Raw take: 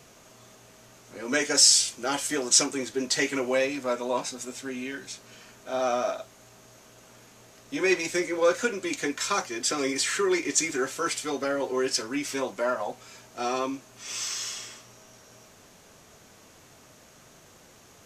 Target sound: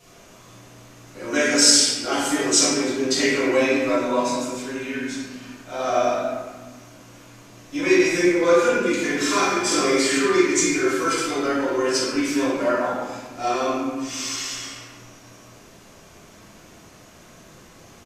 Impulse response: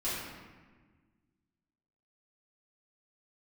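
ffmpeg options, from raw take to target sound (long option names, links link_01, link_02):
-filter_complex "[0:a]asplit=3[link_01][link_02][link_03];[link_01]afade=type=out:start_time=9.08:duration=0.02[link_04];[link_02]asplit=2[link_05][link_06];[link_06]adelay=47,volume=-2dB[link_07];[link_05][link_07]amix=inputs=2:normalize=0,afade=type=in:start_time=9.08:duration=0.02,afade=type=out:start_time=9.99:duration=0.02[link_08];[link_03]afade=type=in:start_time=9.99:duration=0.02[link_09];[link_04][link_08][link_09]amix=inputs=3:normalize=0[link_10];[1:a]atrim=start_sample=2205[link_11];[link_10][link_11]afir=irnorm=-1:irlink=0"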